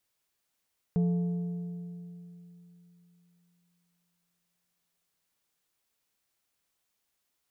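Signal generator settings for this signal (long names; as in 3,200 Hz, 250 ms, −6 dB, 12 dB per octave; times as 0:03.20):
struck metal plate, length 4.69 s, lowest mode 174 Hz, decay 3.40 s, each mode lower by 12 dB, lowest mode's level −22 dB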